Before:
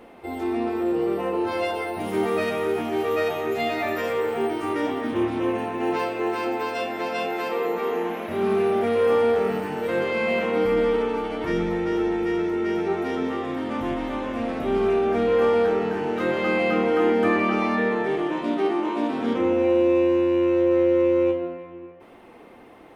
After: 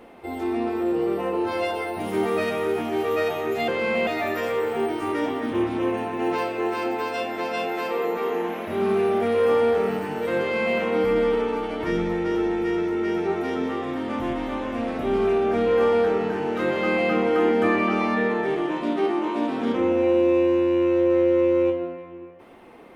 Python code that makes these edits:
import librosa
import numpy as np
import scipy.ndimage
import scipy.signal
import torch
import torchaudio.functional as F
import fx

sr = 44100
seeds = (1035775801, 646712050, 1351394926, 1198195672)

y = fx.edit(x, sr, fx.duplicate(start_s=10.01, length_s=0.39, to_s=3.68), tone=tone)